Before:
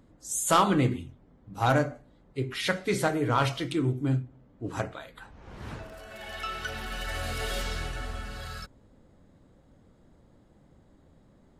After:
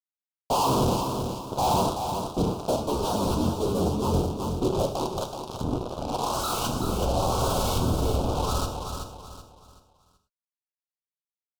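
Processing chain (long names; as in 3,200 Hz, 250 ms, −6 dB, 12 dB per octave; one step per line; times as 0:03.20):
sub-harmonics by changed cycles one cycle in 3, inverted
parametric band 980 Hz +8 dB 0.48 octaves
in parallel at −2.5 dB: downward compressor, threshold −33 dBFS, peak gain reduction 18 dB
on the sum: auto-filter low-pass saw up 0.9 Hz 230–2,800 Hz
flanger 0.19 Hz, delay 6.8 ms, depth 4.6 ms, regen −57%
fuzz pedal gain 43 dB, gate −37 dBFS
Butterworth band-reject 1,900 Hz, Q 0.81
repeating echo 379 ms, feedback 34%, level −6.5 dB
on a send at −7 dB: convolution reverb, pre-delay 3 ms
0:02.76–0:04.14: on the sum: string-ensemble chorus
level −7.5 dB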